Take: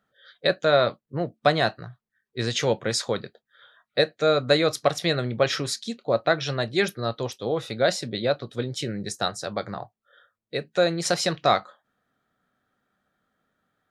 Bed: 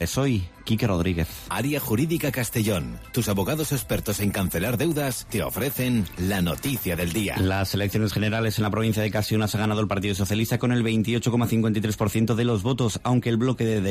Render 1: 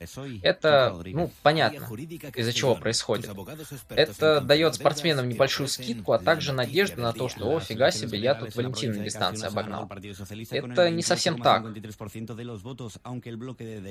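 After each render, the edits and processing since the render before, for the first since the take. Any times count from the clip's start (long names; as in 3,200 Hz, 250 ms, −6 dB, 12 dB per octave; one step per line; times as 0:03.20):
mix in bed −14.5 dB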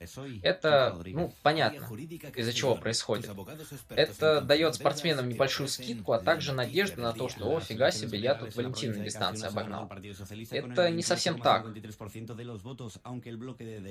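flanger 0.63 Hz, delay 9 ms, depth 3.7 ms, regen −65%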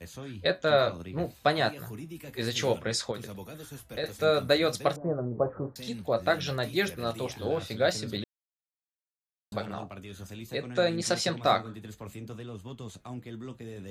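0:03.11–0:04.04: downward compressor 2 to 1, threshold −36 dBFS
0:04.96–0:05.76: Butterworth low-pass 1,100 Hz
0:08.24–0:09.52: silence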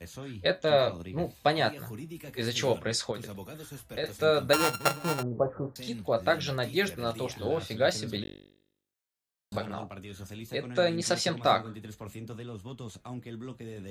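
0:00.60–0:01.64: notch filter 1,400 Hz, Q 5.9
0:04.53–0:05.23: samples sorted by size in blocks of 32 samples
0:08.23–0:09.58: flutter between parallel walls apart 3.5 metres, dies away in 0.71 s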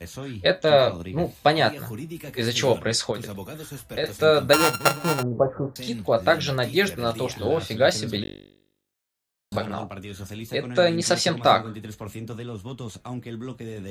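level +6.5 dB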